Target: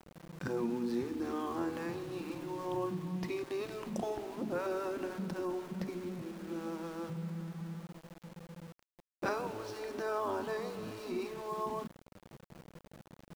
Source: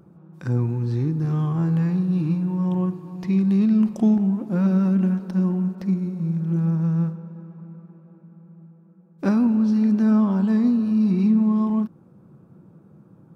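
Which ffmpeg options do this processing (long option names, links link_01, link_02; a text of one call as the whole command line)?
ffmpeg -i in.wav -af "afftfilt=real='re*lt(hypot(re,im),0.355)':imag='im*lt(hypot(re,im),0.355)':win_size=1024:overlap=0.75,aeval=exprs='val(0)*gte(abs(val(0)),0.00562)':channel_layout=same,volume=-2.5dB" out.wav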